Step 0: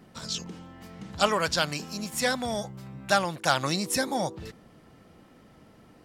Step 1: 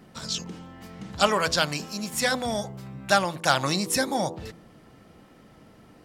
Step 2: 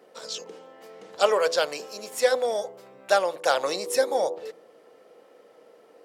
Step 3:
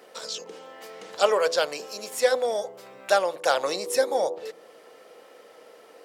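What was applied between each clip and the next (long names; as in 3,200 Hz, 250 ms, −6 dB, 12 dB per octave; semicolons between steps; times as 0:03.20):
hum removal 83.23 Hz, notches 14; level +2.5 dB
high-pass with resonance 480 Hz, resonance Q 4.9; level −4.5 dB
one half of a high-frequency compander encoder only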